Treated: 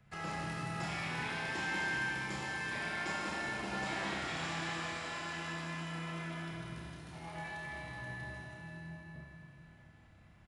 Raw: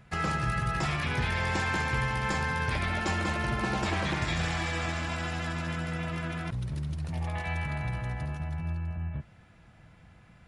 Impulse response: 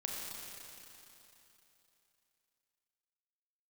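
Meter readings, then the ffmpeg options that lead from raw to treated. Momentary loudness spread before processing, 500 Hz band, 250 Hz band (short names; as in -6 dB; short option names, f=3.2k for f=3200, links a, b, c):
6 LU, -8.0 dB, -8.5 dB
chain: -filter_complex "[0:a]acrossover=split=160|700|3100[a][b][c][d];[a]acompressor=threshold=-47dB:ratio=10[e];[e][b][c][d]amix=inputs=4:normalize=0,asplit=2[f][g];[g]adelay=30,volume=-5dB[h];[f][h]amix=inputs=2:normalize=0[i];[1:a]atrim=start_sample=2205[j];[i][j]afir=irnorm=-1:irlink=0,volume=-8.5dB"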